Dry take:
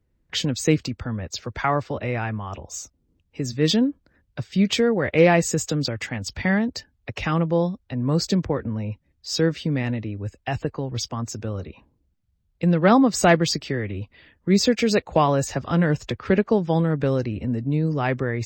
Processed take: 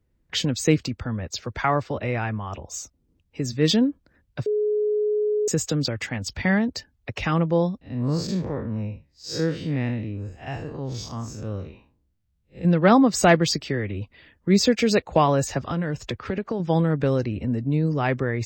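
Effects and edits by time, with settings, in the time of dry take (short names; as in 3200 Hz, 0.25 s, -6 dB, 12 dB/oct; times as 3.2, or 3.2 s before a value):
4.46–5.48 bleep 421 Hz -19.5 dBFS
7.81–12.65 time blur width 0.125 s
15.69–16.6 compressor, threshold -22 dBFS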